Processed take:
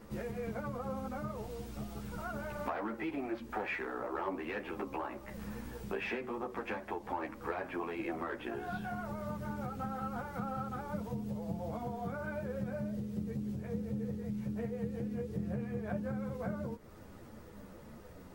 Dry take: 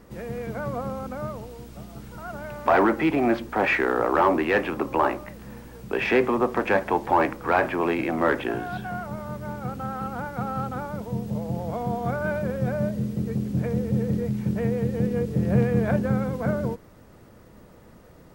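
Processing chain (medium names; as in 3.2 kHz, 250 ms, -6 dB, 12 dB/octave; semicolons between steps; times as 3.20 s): compression 6:1, threshold -34 dBFS, peak gain reduction 17.5 dB; three-phase chorus; trim +1 dB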